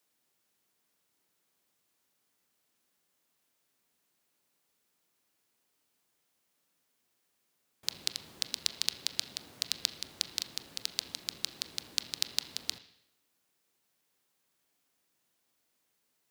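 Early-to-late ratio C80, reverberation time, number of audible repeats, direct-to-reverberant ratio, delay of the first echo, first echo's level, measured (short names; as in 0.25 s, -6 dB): 14.5 dB, 0.80 s, none, 10.0 dB, none, none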